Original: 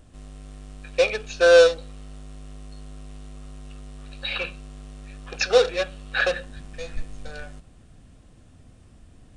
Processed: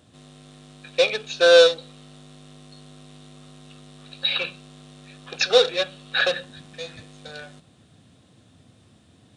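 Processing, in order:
high-pass filter 100 Hz 24 dB per octave
parametric band 3,700 Hz +9.5 dB 0.43 octaves

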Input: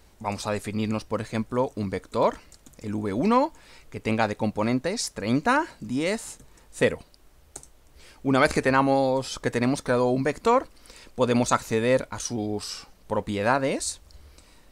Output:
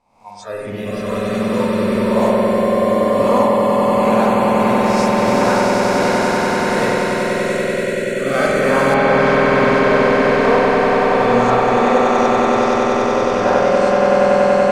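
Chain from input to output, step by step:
peak hold with a rise ahead of every peak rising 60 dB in 0.71 s
noise that follows the level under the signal 15 dB
echo that builds up and dies away 95 ms, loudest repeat 8, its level −4 dB
dynamic equaliser 620 Hz, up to +6 dB, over −29 dBFS, Q 1.7
noise reduction from a noise print of the clip's start 18 dB
low-pass filter 8,700 Hz 12 dB per octave, from 0:08.94 3,900 Hz
spring reverb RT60 1.5 s, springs 50 ms, chirp 60 ms, DRR −1.5 dB
level −4.5 dB

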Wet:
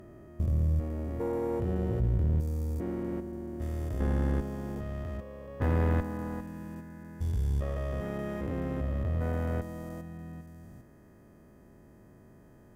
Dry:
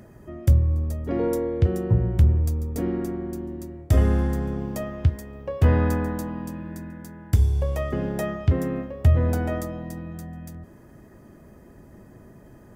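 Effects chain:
spectrum averaged block by block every 400 ms
tube saturation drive 17 dB, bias 0.7
level −2 dB

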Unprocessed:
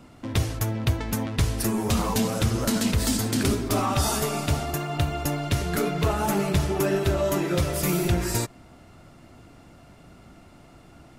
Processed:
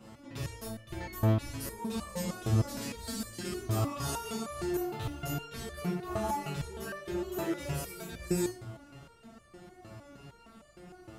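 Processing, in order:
high-pass filter 48 Hz
reversed playback
downward compressor 10 to 1, threshold −30 dBFS, peak gain reduction 13.5 dB
reversed playback
rectangular room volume 35 cubic metres, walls mixed, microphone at 0.92 metres
step-sequenced resonator 6.5 Hz 110–590 Hz
level +5.5 dB

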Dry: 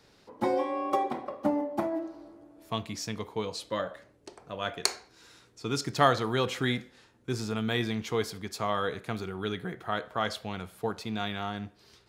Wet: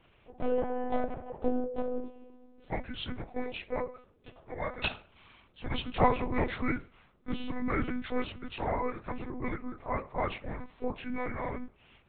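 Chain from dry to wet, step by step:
partials spread apart or drawn together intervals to 82%
one-pitch LPC vocoder at 8 kHz 250 Hz

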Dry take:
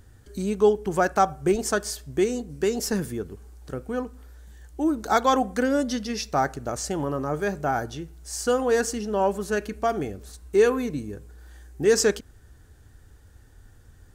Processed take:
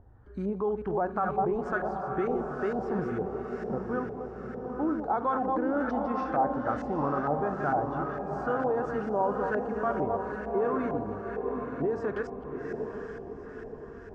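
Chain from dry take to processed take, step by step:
delay that plays each chunk backwards 164 ms, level −9.5 dB
brickwall limiter −18.5 dBFS, peak gain reduction 11.5 dB
feedback delay with all-pass diffusion 822 ms, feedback 52%, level −4.5 dB
auto-filter low-pass saw up 2.2 Hz 770–1,600 Hz
level −4.5 dB

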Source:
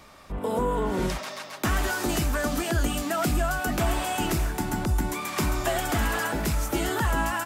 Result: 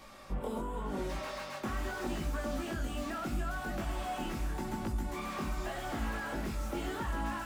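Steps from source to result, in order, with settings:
downward compressor, threshold −31 dBFS, peak gain reduction 10.5 dB
chorus effect 0.83 Hz, delay 18 ms, depth 5.6 ms
on a send at −7 dB: convolution reverb RT60 0.60 s, pre-delay 4 ms
on the sum: slew-rate limiting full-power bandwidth 21 Hz

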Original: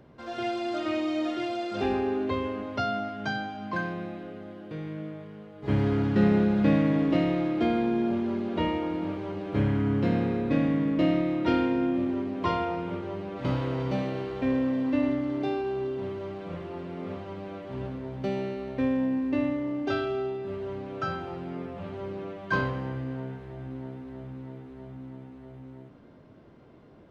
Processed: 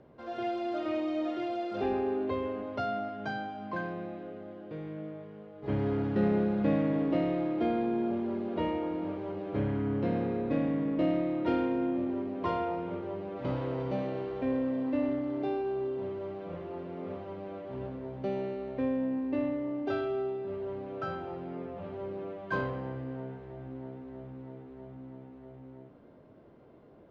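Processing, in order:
high-frequency loss of the air 98 metres
in parallel at −10 dB: soft clipping −30 dBFS, distortion −7 dB
on the sum: parametric band 540 Hz +6.5 dB 1.7 octaves
level −8.5 dB

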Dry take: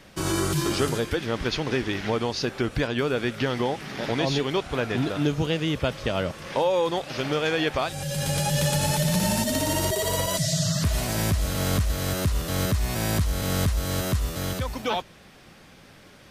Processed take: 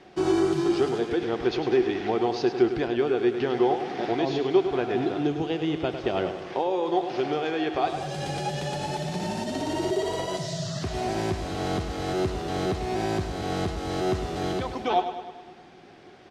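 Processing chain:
low-pass filter 5,100 Hz 12 dB per octave
low-shelf EQ 80 Hz −10 dB
repeating echo 102 ms, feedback 57%, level −9.5 dB
speech leveller
hollow resonant body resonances 370/730 Hz, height 16 dB, ringing for 50 ms
level −6 dB

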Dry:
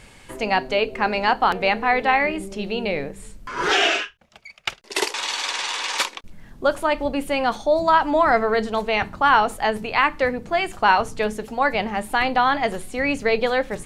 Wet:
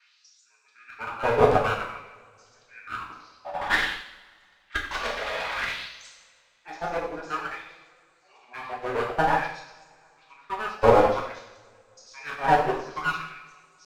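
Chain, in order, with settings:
reversed piece by piece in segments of 82 ms
parametric band 9,600 Hz −3 dB 0.32 octaves
mains-hum notches 60/120/180/240/300/360 Hz
pitch shifter −10 semitones
auto-filter high-pass sine 0.53 Hz 500–8,000 Hz
asymmetric clip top −25 dBFS
coupled-rooms reverb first 0.91 s, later 2.8 s, from −18 dB, DRR −5 dB
expander for the loud parts 1.5 to 1, over −29 dBFS
level −4 dB

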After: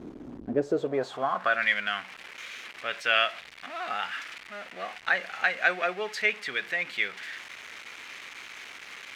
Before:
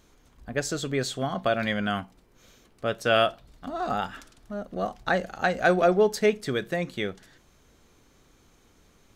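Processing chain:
converter with a step at zero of −34 dBFS
band-pass filter sweep 280 Hz → 2,200 Hz, 0:00.44–0:01.70
level +7.5 dB

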